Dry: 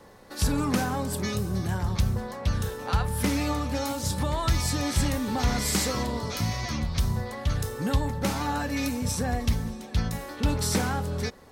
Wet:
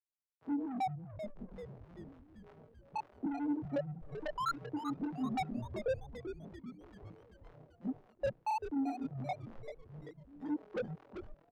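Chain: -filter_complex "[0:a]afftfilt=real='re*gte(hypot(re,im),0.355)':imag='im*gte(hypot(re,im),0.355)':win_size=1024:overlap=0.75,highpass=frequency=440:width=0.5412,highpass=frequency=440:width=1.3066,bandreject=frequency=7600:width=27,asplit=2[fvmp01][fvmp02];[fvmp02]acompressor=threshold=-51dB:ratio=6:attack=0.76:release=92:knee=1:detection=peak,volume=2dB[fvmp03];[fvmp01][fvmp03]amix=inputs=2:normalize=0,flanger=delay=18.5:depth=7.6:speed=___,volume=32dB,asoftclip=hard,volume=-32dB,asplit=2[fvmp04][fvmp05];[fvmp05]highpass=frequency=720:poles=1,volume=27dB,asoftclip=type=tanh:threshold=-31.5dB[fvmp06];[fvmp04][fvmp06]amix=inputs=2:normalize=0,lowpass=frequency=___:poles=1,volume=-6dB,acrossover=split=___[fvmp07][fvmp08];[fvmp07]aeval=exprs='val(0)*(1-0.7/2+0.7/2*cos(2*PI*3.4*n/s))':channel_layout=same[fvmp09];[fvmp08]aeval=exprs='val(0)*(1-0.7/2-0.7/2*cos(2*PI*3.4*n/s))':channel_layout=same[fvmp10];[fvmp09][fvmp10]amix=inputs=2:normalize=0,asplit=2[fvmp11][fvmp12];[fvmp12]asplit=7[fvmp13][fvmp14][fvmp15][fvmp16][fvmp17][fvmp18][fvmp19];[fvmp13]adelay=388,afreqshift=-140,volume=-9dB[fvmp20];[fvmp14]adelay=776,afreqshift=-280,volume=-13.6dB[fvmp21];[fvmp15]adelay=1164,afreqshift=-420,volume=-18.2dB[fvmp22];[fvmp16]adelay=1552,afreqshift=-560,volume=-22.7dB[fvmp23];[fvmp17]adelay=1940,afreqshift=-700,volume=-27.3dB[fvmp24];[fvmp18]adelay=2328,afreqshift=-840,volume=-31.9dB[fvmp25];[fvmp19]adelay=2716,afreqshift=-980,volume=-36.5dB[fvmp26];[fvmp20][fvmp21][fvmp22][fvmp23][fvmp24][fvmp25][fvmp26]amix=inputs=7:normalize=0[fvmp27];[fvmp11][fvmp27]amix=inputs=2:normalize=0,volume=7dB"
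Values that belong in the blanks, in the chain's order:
1.5, 3500, 790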